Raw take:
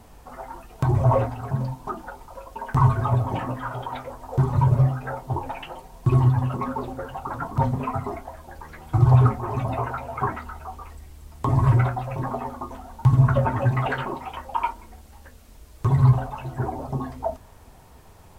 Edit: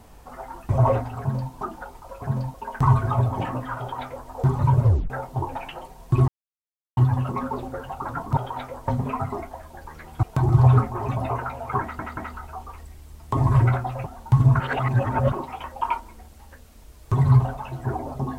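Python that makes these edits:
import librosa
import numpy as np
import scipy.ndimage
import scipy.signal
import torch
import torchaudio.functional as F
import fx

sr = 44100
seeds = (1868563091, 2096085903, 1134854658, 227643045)

y = fx.edit(x, sr, fx.move(start_s=0.69, length_s=0.26, to_s=8.97),
    fx.duplicate(start_s=1.46, length_s=0.32, to_s=2.48),
    fx.duplicate(start_s=3.73, length_s=0.51, to_s=7.62),
    fx.tape_stop(start_s=4.78, length_s=0.26),
    fx.insert_silence(at_s=6.22, length_s=0.69),
    fx.stutter(start_s=10.29, slice_s=0.18, count=3),
    fx.cut(start_s=12.18, length_s=0.61),
    fx.reverse_span(start_s=13.33, length_s=0.72), tone=tone)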